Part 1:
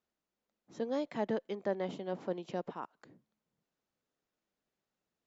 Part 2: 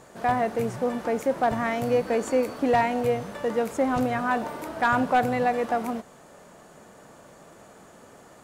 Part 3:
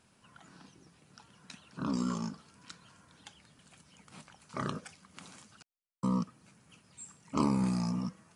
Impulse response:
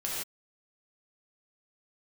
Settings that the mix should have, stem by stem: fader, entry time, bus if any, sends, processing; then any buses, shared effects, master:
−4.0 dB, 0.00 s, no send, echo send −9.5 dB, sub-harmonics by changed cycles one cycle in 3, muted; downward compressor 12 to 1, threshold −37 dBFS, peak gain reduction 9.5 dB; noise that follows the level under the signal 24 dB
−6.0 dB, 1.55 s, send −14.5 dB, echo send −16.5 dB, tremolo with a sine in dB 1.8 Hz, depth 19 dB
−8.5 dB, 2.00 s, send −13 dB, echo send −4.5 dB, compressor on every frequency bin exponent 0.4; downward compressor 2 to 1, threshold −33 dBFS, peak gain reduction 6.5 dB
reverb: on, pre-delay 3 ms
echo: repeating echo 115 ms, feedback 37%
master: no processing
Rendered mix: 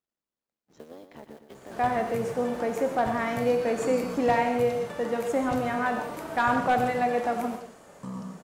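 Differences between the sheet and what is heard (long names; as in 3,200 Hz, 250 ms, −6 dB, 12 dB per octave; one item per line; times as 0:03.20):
stem 2: missing tremolo with a sine in dB 1.8 Hz, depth 19 dB
stem 3: missing compressor on every frequency bin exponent 0.4
reverb return +9.5 dB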